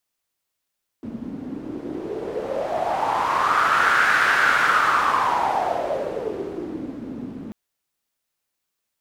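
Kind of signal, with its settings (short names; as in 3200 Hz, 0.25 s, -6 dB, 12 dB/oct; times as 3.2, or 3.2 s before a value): wind-like swept noise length 6.49 s, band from 240 Hz, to 1500 Hz, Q 5.3, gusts 1, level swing 15.5 dB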